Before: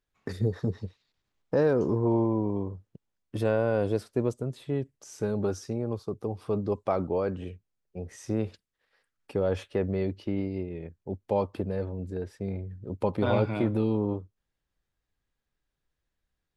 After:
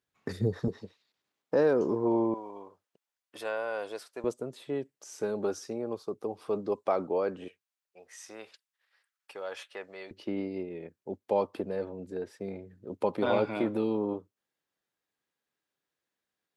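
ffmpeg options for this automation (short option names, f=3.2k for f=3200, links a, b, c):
-af "asetnsamples=n=441:p=0,asendcmd='0.68 highpass f 250;2.34 highpass f 810;4.24 highpass f 300;7.48 highpass f 1000;10.11 highpass f 260',highpass=110"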